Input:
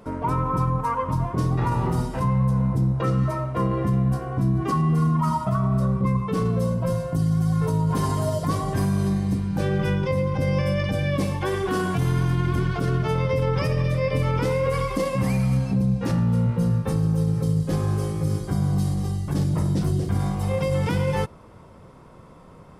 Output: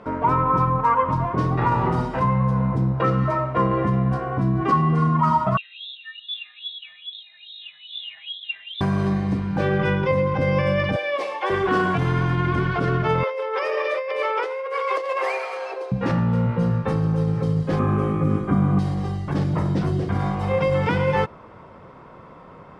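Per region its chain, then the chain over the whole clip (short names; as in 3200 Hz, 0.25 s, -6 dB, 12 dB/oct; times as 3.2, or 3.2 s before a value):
5.57–8.81 low shelf 340 Hz +7 dB + wah 2.4 Hz 410–2100 Hz, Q 8.2 + inverted band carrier 3900 Hz
10.96–11.5 HPF 460 Hz 24 dB/oct + bell 1500 Hz -6 dB 0.37 oct
13.23–15.92 steep high-pass 370 Hz 72 dB/oct + negative-ratio compressor -30 dBFS
17.79–18.79 median filter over 3 samples + bell 4800 Hz -14 dB 0.8 oct + small resonant body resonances 240/1200/2400 Hz, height 12 dB, ringing for 40 ms
whole clip: LPF 2000 Hz 12 dB/oct; tilt +2.5 dB/oct; gain +7 dB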